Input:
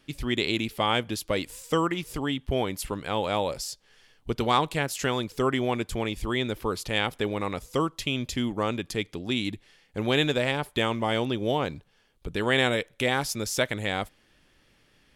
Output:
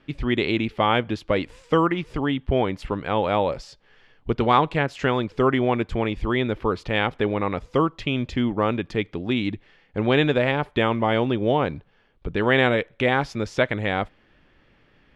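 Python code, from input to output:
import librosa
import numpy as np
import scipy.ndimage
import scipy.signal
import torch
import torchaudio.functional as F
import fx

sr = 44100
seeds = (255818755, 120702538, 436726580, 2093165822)

y = scipy.signal.sosfilt(scipy.signal.butter(2, 2400.0, 'lowpass', fs=sr, output='sos'), x)
y = F.gain(torch.from_numpy(y), 5.5).numpy()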